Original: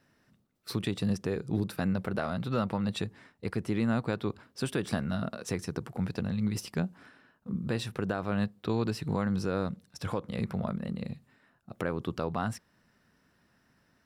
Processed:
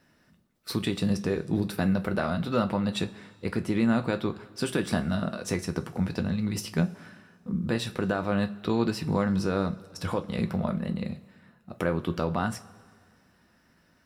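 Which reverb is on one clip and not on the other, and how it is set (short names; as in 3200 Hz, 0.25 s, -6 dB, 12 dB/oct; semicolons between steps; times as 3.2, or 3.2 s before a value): two-slope reverb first 0.21 s, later 1.9 s, from -21 dB, DRR 6.5 dB; gain +3.5 dB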